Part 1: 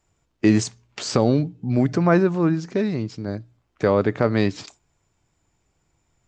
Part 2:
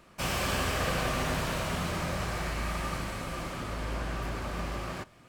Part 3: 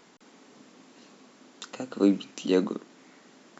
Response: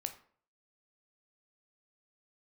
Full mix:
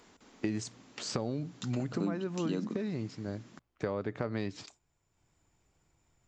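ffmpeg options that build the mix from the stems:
-filter_complex "[0:a]acompressor=mode=upward:threshold=-54dB:ratio=2.5,volume=-9.5dB[link_01];[2:a]asubboost=boost=7:cutoff=190,volume=-3.5dB[link_02];[link_01][link_02]amix=inputs=2:normalize=0,acompressor=threshold=-29dB:ratio=10"

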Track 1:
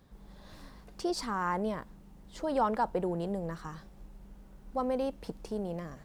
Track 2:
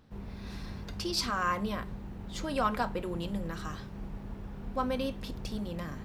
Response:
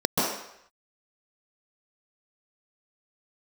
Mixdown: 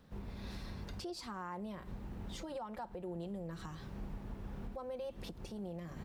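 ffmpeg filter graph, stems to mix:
-filter_complex "[0:a]highpass=86,aecho=1:1:5.7:0.5,acompressor=threshold=-33dB:ratio=2.5,volume=-6dB,asplit=2[link_01][link_02];[1:a]alimiter=level_in=1dB:limit=-24dB:level=0:latency=1:release=145,volume=-1dB,adelay=2,volume=-2dB[link_03];[link_02]apad=whole_len=266892[link_04];[link_03][link_04]sidechaincompress=threshold=-54dB:ratio=5:attack=7.7:release=115[link_05];[link_01][link_05]amix=inputs=2:normalize=0,alimiter=level_in=11dB:limit=-24dB:level=0:latency=1:release=218,volume=-11dB"

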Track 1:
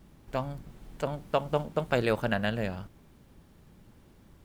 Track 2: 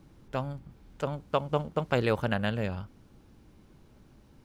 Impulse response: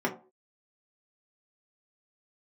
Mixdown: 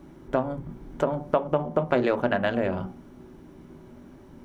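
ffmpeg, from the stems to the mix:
-filter_complex "[0:a]afwtdn=0.00708,equalizer=frequency=570:width_type=o:width=2.2:gain=8.5,volume=2dB,asplit=2[link_01][link_02];[1:a]volume=0dB,asplit=2[link_03][link_04];[link_04]volume=-3dB[link_05];[link_02]apad=whole_len=195871[link_06];[link_03][link_06]sidechaincompress=threshold=-21dB:ratio=8:attack=16:release=239[link_07];[2:a]atrim=start_sample=2205[link_08];[link_05][link_08]afir=irnorm=-1:irlink=0[link_09];[link_01][link_07][link_09]amix=inputs=3:normalize=0,acompressor=threshold=-24dB:ratio=2.5"

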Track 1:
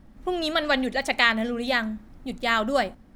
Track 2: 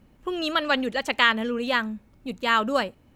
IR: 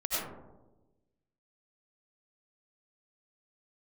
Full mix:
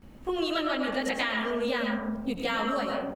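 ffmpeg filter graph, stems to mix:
-filter_complex "[0:a]volume=-6.5dB,asplit=2[link_01][link_02];[1:a]acompressor=threshold=-32dB:ratio=2,adelay=19,volume=3dB,asplit=2[link_03][link_04];[link_04]volume=-7.5dB[link_05];[link_02]apad=whole_len=139824[link_06];[link_03][link_06]sidechaincompress=threshold=-34dB:ratio=8:attack=16:release=118[link_07];[2:a]atrim=start_sample=2205[link_08];[link_05][link_08]afir=irnorm=-1:irlink=0[link_09];[link_01][link_07][link_09]amix=inputs=3:normalize=0,acompressor=threshold=-25dB:ratio=6"

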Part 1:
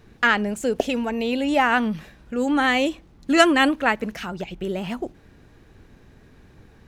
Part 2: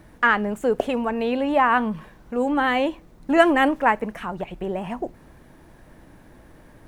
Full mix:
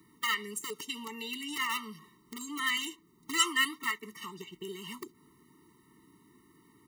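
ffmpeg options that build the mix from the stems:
ffmpeg -i stem1.wav -i stem2.wav -filter_complex "[0:a]highpass=1200,highshelf=frequency=4000:gain=6.5,flanger=delay=8.3:depth=6.2:regen=-77:speed=1.8:shape=sinusoidal,volume=-2.5dB[link_01];[1:a]alimiter=limit=-10dB:level=0:latency=1:release=264,acompressor=threshold=-31dB:ratio=3,aeval=exprs='(mod(13.3*val(0)+1,2)-1)/13.3':channel_layout=same,volume=-1,adelay=3.1,volume=-8.5dB,asplit=2[link_02][link_03];[link_03]apad=whole_len=303385[link_04];[link_01][link_04]sidechaingate=range=-14dB:threshold=-45dB:ratio=16:detection=peak[link_05];[link_05][link_02]amix=inputs=2:normalize=0,highpass=180,highshelf=frequency=7200:gain=10,afftfilt=real='re*eq(mod(floor(b*sr/1024/450),2),0)':imag='im*eq(mod(floor(b*sr/1024/450),2),0)':win_size=1024:overlap=0.75" out.wav

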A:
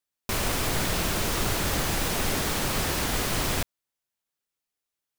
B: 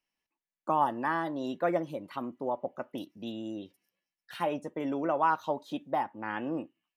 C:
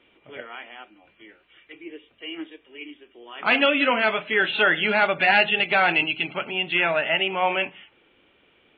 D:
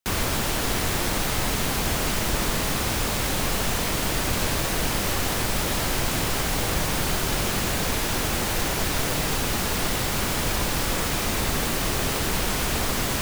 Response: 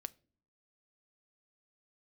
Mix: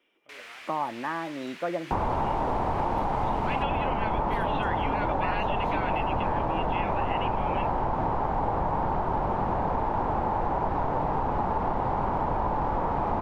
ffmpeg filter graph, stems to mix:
-filter_complex "[0:a]bandpass=frequency=2200:width_type=q:width=2:csg=0,volume=-9dB[link_01];[1:a]volume=-1dB[link_02];[2:a]highpass=250,volume=-11dB[link_03];[3:a]lowpass=frequency=890:width_type=q:width=4.7,adelay=1850,volume=1.5dB[link_04];[link_01][link_02][link_03][link_04]amix=inputs=4:normalize=0,acompressor=threshold=-24dB:ratio=4"

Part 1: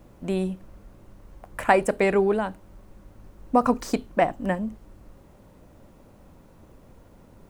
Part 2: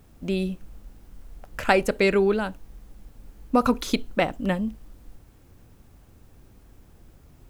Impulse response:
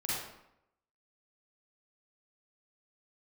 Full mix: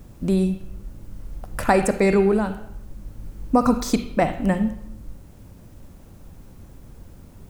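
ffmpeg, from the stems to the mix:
-filter_complex "[0:a]bass=frequency=250:gain=12,treble=frequency=4000:gain=10,bandreject=frequency=60:width_type=h:width=6,bandreject=frequency=120:width_type=h:width=6,bandreject=frequency=180:width_type=h:width=6,bandreject=frequency=240:width_type=h:width=6,volume=-3dB,asplit=2[link_01][link_02];[1:a]volume=1.5dB,asplit=2[link_03][link_04];[link_04]volume=-15.5dB[link_05];[link_02]apad=whole_len=330594[link_06];[link_03][link_06]sidechaincompress=threshold=-27dB:ratio=8:attack=16:release=1080[link_07];[2:a]atrim=start_sample=2205[link_08];[link_05][link_08]afir=irnorm=-1:irlink=0[link_09];[link_01][link_07][link_09]amix=inputs=3:normalize=0"

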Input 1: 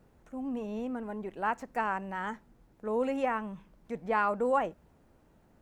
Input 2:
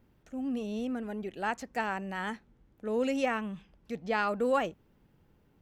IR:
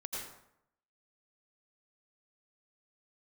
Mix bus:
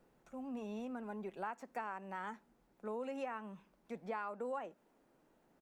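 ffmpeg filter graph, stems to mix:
-filter_complex "[0:a]highpass=frequency=230:width=0.5412,highpass=frequency=230:width=1.3066,volume=-5.5dB,asplit=2[link_01][link_02];[1:a]aecho=1:1:6:0.9,adelay=0.7,volume=-12dB[link_03];[link_02]apad=whole_len=247775[link_04];[link_03][link_04]sidechaincompress=threshold=-42dB:ratio=8:attack=16:release=1250[link_05];[link_01][link_05]amix=inputs=2:normalize=0,acompressor=threshold=-38dB:ratio=6"

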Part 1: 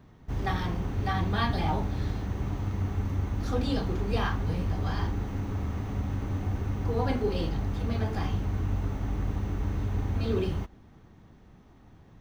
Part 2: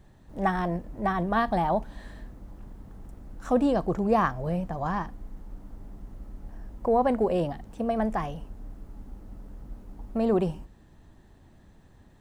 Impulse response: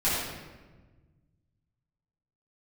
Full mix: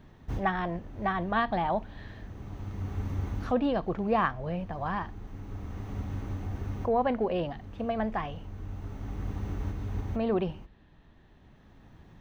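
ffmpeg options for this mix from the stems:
-filter_complex "[0:a]acrossover=split=3300[link_01][link_02];[link_02]acompressor=threshold=-52dB:ratio=4:attack=1:release=60[link_03];[link_01][link_03]amix=inputs=2:normalize=0,volume=-0.5dB[link_04];[1:a]lowpass=frequency=3400:width=0.5412,lowpass=frequency=3400:width=1.3066,highshelf=frequency=2100:gain=11.5,volume=-4.5dB,asplit=2[link_05][link_06];[link_06]apad=whole_len=538164[link_07];[link_04][link_07]sidechaincompress=threshold=-43dB:ratio=10:attack=21:release=1140[link_08];[link_08][link_05]amix=inputs=2:normalize=0"

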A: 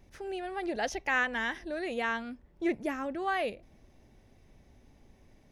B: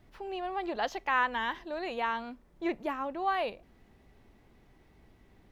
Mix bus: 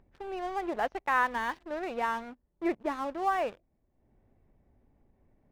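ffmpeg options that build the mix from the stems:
ffmpeg -i stem1.wav -i stem2.wav -filter_complex "[0:a]lowpass=1400,volume=-15.5dB[link_01];[1:a]lowpass=frequency=2400:width=0.5412,lowpass=frequency=2400:width=1.3066,aeval=exprs='sgn(val(0))*max(abs(val(0))-0.00531,0)':channel_layout=same,volume=2dB[link_02];[link_01][link_02]amix=inputs=2:normalize=0,acompressor=mode=upward:threshold=-55dB:ratio=2.5" out.wav

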